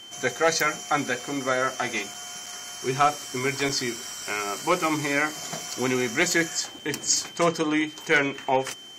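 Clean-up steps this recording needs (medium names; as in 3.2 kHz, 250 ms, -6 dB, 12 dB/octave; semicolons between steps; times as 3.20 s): clip repair -11 dBFS; band-stop 3.1 kHz, Q 30; interpolate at 2.14/2.46/3.69/6.79 s, 4.6 ms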